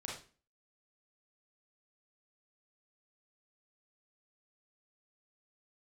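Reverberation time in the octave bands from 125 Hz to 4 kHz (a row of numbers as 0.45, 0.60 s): 0.40, 0.50, 0.40, 0.35, 0.35, 0.35 s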